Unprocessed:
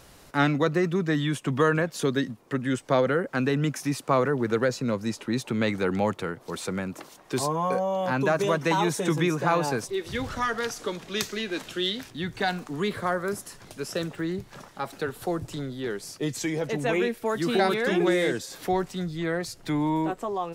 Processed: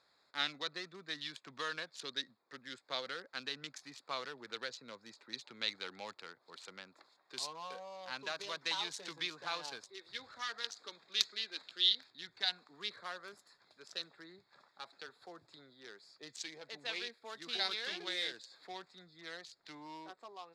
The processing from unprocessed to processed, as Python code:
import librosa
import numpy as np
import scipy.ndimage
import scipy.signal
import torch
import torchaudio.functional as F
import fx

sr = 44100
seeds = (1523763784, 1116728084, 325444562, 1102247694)

y = fx.wiener(x, sr, points=15)
y = fx.bandpass_q(y, sr, hz=4100.0, q=2.1)
y = fx.dynamic_eq(y, sr, hz=4100.0, q=2.9, threshold_db=-54.0, ratio=4.0, max_db=4)
y = y * 10.0 ** (1.5 / 20.0)